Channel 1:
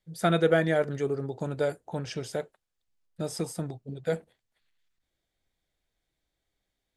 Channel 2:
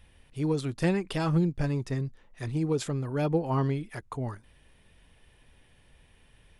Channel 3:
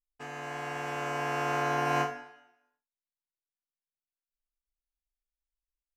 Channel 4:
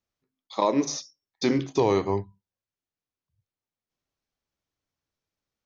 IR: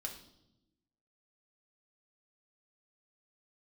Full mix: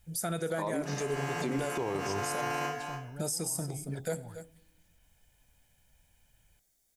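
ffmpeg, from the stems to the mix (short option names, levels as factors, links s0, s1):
-filter_complex "[0:a]aexciter=amount=7.5:drive=3:freq=5200,volume=0.841,asplit=3[s0][s1][s2];[s1]volume=0.398[s3];[s2]volume=0.15[s4];[1:a]aecho=1:1:1.3:0.65,alimiter=level_in=1.19:limit=0.0631:level=0:latency=1,volume=0.841,volume=0.251[s5];[2:a]highshelf=f=3700:g=8,adelay=650,volume=1.26,asplit=2[s6][s7];[s7]volume=0.15[s8];[3:a]lowpass=2900,volume=1.19[s9];[4:a]atrim=start_sample=2205[s10];[s3][s10]afir=irnorm=-1:irlink=0[s11];[s4][s8]amix=inputs=2:normalize=0,aecho=0:1:280:1[s12];[s0][s5][s6][s9][s11][s12]amix=inputs=6:normalize=0,alimiter=limit=0.0668:level=0:latency=1:release=201"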